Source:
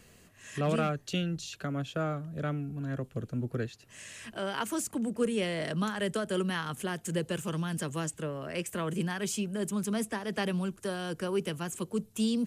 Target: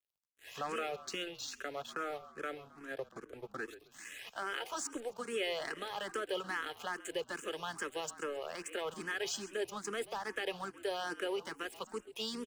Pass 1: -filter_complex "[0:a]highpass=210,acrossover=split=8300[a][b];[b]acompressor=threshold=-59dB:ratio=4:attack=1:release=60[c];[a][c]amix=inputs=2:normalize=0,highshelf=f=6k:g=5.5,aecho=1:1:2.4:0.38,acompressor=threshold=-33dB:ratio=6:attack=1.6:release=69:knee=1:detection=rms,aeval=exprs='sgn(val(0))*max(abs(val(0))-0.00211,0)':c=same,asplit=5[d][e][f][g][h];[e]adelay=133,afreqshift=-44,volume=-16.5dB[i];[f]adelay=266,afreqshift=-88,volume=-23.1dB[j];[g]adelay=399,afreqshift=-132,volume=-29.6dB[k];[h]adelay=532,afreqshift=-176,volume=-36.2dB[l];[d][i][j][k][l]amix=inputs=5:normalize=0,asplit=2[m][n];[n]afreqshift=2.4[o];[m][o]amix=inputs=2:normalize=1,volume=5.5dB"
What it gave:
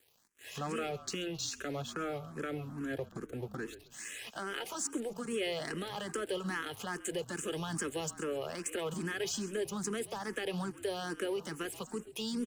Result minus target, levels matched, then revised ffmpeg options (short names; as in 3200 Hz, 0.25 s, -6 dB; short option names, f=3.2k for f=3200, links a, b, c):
250 Hz band +6.0 dB; 8000 Hz band +3.0 dB
-filter_complex "[0:a]highpass=530,acrossover=split=8300[a][b];[b]acompressor=threshold=-59dB:ratio=4:attack=1:release=60[c];[a][c]amix=inputs=2:normalize=0,highshelf=f=6k:g=-5.5,aecho=1:1:2.4:0.38,acompressor=threshold=-33dB:ratio=6:attack=1.6:release=69:knee=1:detection=rms,aeval=exprs='sgn(val(0))*max(abs(val(0))-0.00211,0)':c=same,asplit=5[d][e][f][g][h];[e]adelay=133,afreqshift=-44,volume=-16.5dB[i];[f]adelay=266,afreqshift=-88,volume=-23.1dB[j];[g]adelay=399,afreqshift=-132,volume=-29.6dB[k];[h]adelay=532,afreqshift=-176,volume=-36.2dB[l];[d][i][j][k][l]amix=inputs=5:normalize=0,asplit=2[m][n];[n]afreqshift=2.4[o];[m][o]amix=inputs=2:normalize=1,volume=5.5dB"